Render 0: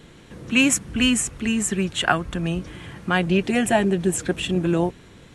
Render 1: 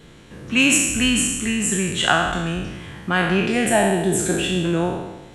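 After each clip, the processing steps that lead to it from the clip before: spectral sustain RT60 1.10 s; trim -1 dB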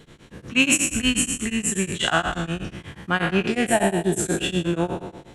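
tremolo of two beating tones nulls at 8.3 Hz

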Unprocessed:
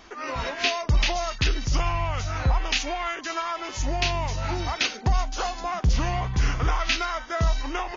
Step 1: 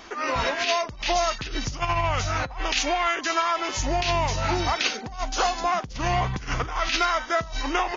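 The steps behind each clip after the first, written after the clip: compressor with a negative ratio -25 dBFS, ratio -0.5; bass shelf 140 Hz -7 dB; trim +3.5 dB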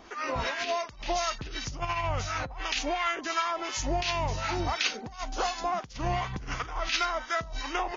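harmonic tremolo 2.8 Hz, depth 70%, crossover 960 Hz; trim -2.5 dB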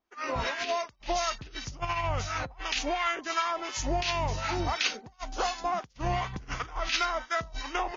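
expander -31 dBFS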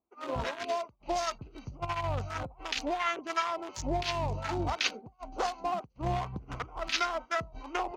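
local Wiener filter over 25 samples; high-pass 55 Hz 12 dB/octave

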